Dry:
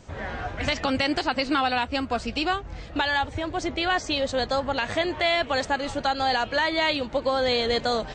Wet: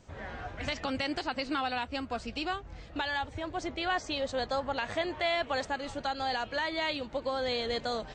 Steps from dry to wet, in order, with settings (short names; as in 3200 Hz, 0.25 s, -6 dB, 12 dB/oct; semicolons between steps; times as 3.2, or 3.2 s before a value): 3.36–5.67 dynamic EQ 890 Hz, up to +3 dB, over -31 dBFS, Q 0.72; gain -8.5 dB